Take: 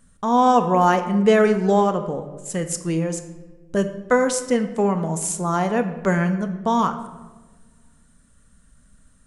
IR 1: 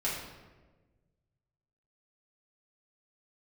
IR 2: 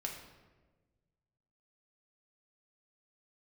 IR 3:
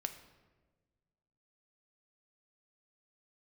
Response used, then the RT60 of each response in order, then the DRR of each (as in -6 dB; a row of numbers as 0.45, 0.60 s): 3; 1.3, 1.3, 1.4 s; -8.0, 0.0, 7.0 dB